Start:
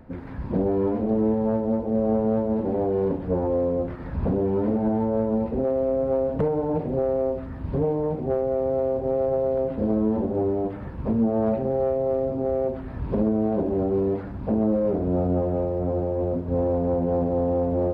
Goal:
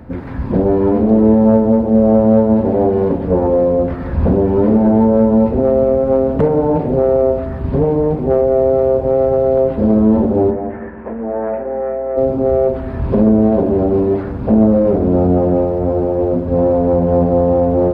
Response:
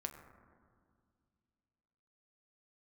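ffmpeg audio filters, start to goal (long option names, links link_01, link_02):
-filter_complex "[0:a]asplit=3[link_01][link_02][link_03];[link_01]afade=type=out:start_time=10.5:duration=0.02[link_04];[link_02]highpass=frequency=370:width=0.5412,highpass=frequency=370:width=1.3066,equalizer=frequency=400:width_type=q:width=4:gain=-8,equalizer=frequency=580:width_type=q:width=4:gain=-5,equalizer=frequency=820:width_type=q:width=4:gain=-3,equalizer=frequency=1200:width_type=q:width=4:gain=-6,equalizer=frequency=1800:width_type=q:width=4:gain=5,lowpass=frequency=2100:width=0.5412,lowpass=frequency=2100:width=1.3066,afade=type=in:start_time=10.5:duration=0.02,afade=type=out:start_time=12.16:duration=0.02[link_05];[link_03]afade=type=in:start_time=12.16:duration=0.02[link_06];[link_04][link_05][link_06]amix=inputs=3:normalize=0,aeval=exprs='val(0)+0.00355*(sin(2*PI*60*n/s)+sin(2*PI*2*60*n/s)/2+sin(2*PI*3*60*n/s)/3+sin(2*PI*4*60*n/s)/4+sin(2*PI*5*60*n/s)/5)':channel_layout=same,asplit=2[link_07][link_08];[1:a]atrim=start_sample=2205[link_09];[link_08][link_09]afir=irnorm=-1:irlink=0,volume=4.5dB[link_10];[link_07][link_10]amix=inputs=2:normalize=0,volume=3dB"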